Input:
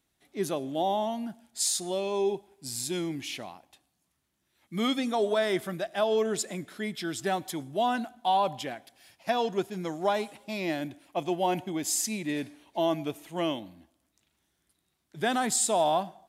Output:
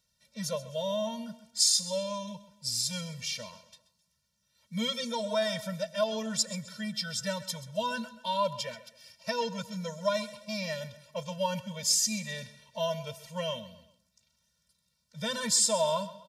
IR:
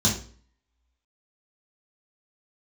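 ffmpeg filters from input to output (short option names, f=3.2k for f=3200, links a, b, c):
-af "equalizer=f=5.3k:w=1.6:g=13,aecho=1:1:131|262|393:0.158|0.0602|0.0229,afftfilt=real='re*eq(mod(floor(b*sr/1024/220),2),0)':imag='im*eq(mod(floor(b*sr/1024/220),2),0)':win_size=1024:overlap=0.75"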